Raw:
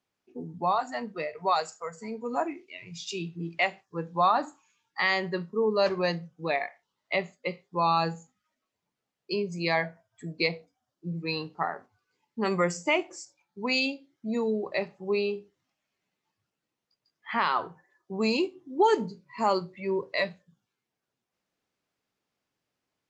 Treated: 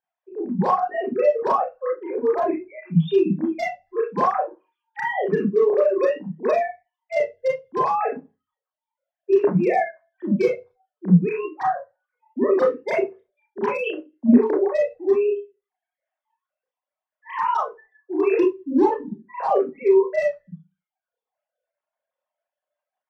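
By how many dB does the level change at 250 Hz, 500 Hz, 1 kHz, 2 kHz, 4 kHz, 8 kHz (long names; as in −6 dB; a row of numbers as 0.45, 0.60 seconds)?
+10.5 dB, +10.0 dB, +4.5 dB, −1.5 dB, below −10 dB, can't be measured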